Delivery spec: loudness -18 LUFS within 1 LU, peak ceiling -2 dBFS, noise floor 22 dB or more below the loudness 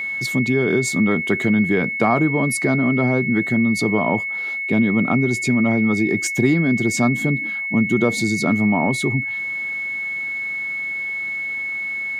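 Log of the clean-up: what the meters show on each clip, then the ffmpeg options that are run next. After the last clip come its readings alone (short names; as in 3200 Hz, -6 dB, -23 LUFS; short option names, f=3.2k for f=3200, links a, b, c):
steady tone 2200 Hz; tone level -23 dBFS; loudness -19.5 LUFS; peak -4.5 dBFS; loudness target -18.0 LUFS
-> -af "bandreject=f=2.2k:w=30"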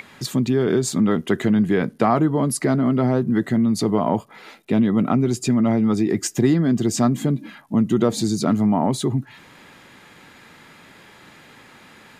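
steady tone none; loudness -20.0 LUFS; peak -5.0 dBFS; loudness target -18.0 LUFS
-> -af "volume=2dB"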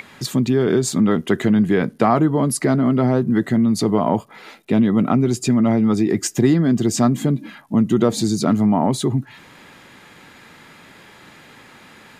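loudness -18.0 LUFS; peak -3.0 dBFS; noise floor -46 dBFS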